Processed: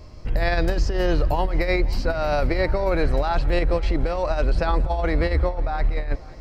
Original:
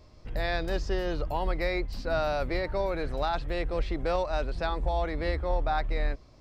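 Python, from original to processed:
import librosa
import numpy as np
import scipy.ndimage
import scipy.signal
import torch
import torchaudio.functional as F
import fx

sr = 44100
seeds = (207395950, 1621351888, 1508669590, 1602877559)

p1 = fx.over_compress(x, sr, threshold_db=-29.0, ratio=-0.5)
p2 = fx.low_shelf(p1, sr, hz=130.0, db=4.5)
p3 = fx.notch(p2, sr, hz=3600.0, q=8.8)
p4 = p3 + fx.echo_heads(p3, sr, ms=177, heads='first and third', feedback_pct=61, wet_db=-23.0, dry=0)
y = p4 * librosa.db_to_amplitude(7.5)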